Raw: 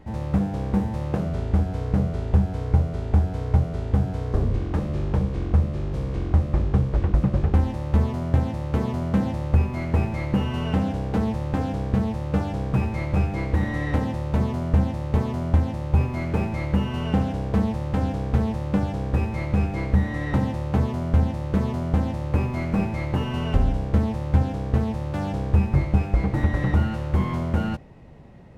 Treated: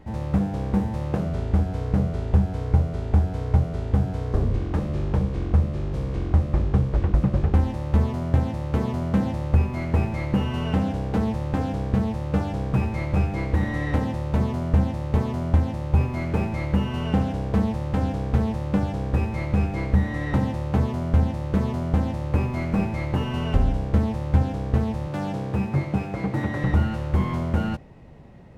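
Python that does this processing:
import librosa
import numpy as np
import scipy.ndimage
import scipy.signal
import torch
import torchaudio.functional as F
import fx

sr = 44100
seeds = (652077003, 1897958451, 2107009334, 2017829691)

y = fx.highpass(x, sr, hz=110.0, slope=24, at=(25.07, 26.64))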